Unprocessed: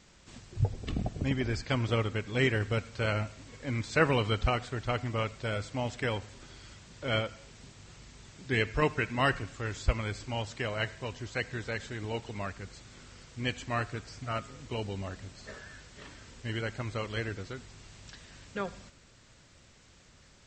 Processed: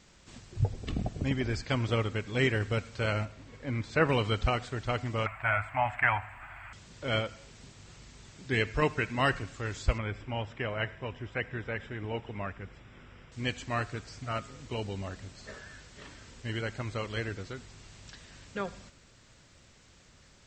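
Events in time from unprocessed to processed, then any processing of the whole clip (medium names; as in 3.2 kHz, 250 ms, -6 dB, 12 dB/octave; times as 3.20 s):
3.25–4.09 s: low-pass 2.6 kHz 6 dB/octave
5.26–6.73 s: FFT filter 110 Hz 0 dB, 160 Hz -9 dB, 330 Hz -11 dB, 480 Hz -20 dB, 680 Hz +11 dB, 1.8 kHz +11 dB, 2.5 kHz +8 dB, 3.7 kHz -18 dB, 6.1 kHz -26 dB, 12 kHz +13 dB
9.98–13.32 s: Savitzky-Golay filter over 25 samples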